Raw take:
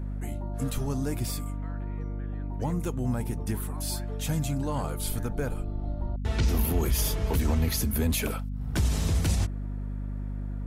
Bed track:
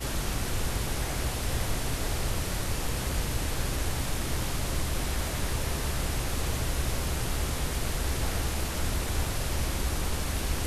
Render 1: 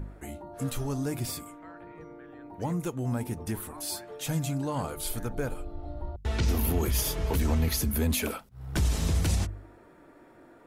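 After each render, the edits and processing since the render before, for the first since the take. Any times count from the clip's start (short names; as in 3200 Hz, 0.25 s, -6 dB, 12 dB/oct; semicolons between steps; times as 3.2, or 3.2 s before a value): de-hum 50 Hz, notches 5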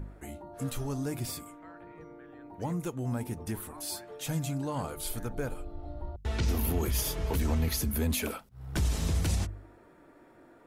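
gain -2.5 dB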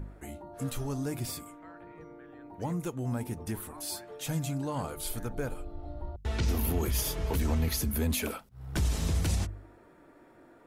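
nothing audible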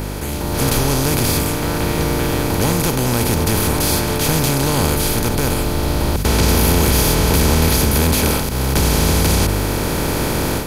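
per-bin compression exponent 0.2; AGC gain up to 10 dB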